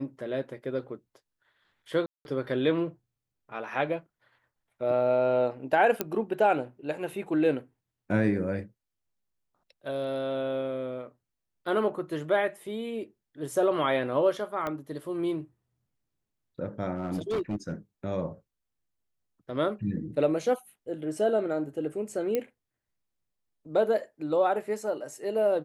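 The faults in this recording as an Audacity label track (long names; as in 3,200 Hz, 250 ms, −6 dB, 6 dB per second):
2.060000	2.250000	drop-out 191 ms
6.010000	6.010000	click −11 dBFS
14.670000	14.670000	click −19 dBFS
16.950000	17.720000	clipping −25.5 dBFS
22.350000	22.350000	click −15 dBFS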